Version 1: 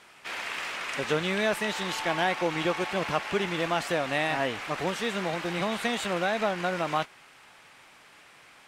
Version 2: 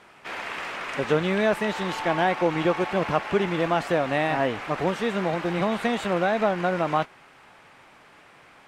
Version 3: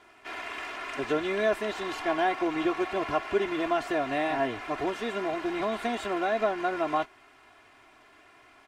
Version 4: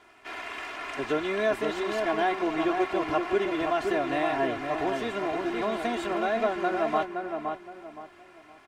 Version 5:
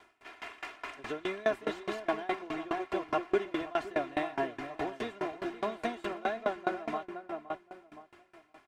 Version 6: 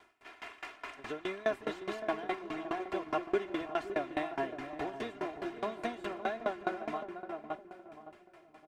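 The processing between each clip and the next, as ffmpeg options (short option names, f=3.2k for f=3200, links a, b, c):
-af "highshelf=f=2.2k:g=-12,volume=6dB"
-af "aecho=1:1:2.9:0.83,volume=-6.5dB"
-filter_complex "[0:a]asplit=2[a][b];[b]adelay=518,lowpass=f=1.5k:p=1,volume=-4dB,asplit=2[c][d];[d]adelay=518,lowpass=f=1.5k:p=1,volume=0.32,asplit=2[e][f];[f]adelay=518,lowpass=f=1.5k:p=1,volume=0.32,asplit=2[g][h];[h]adelay=518,lowpass=f=1.5k:p=1,volume=0.32[i];[a][c][e][g][i]amix=inputs=5:normalize=0"
-af "aeval=exprs='val(0)*pow(10,-24*if(lt(mod(4.8*n/s,1),2*abs(4.8)/1000),1-mod(4.8*n/s,1)/(2*abs(4.8)/1000),(mod(4.8*n/s,1)-2*abs(4.8)/1000)/(1-2*abs(4.8)/1000))/20)':c=same"
-filter_complex "[0:a]asplit=2[a][b];[b]adelay=563,lowpass=f=820:p=1,volume=-10dB,asplit=2[c][d];[d]adelay=563,lowpass=f=820:p=1,volume=0.37,asplit=2[e][f];[f]adelay=563,lowpass=f=820:p=1,volume=0.37,asplit=2[g][h];[h]adelay=563,lowpass=f=820:p=1,volume=0.37[i];[a][c][e][g][i]amix=inputs=5:normalize=0,volume=-2.5dB"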